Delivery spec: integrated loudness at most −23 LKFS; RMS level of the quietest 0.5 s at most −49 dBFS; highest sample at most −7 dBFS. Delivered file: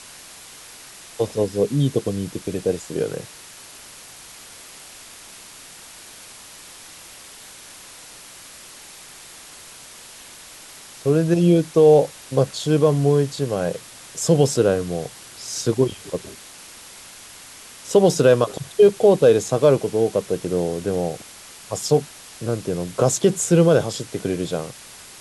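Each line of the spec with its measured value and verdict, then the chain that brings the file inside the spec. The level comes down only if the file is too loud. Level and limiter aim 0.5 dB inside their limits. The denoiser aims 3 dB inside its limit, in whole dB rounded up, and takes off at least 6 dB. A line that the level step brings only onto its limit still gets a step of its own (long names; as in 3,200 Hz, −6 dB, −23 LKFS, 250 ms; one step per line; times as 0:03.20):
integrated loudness −20.0 LKFS: out of spec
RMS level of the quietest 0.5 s −42 dBFS: out of spec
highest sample −5.0 dBFS: out of spec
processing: broadband denoise 7 dB, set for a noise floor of −42 dBFS
level −3.5 dB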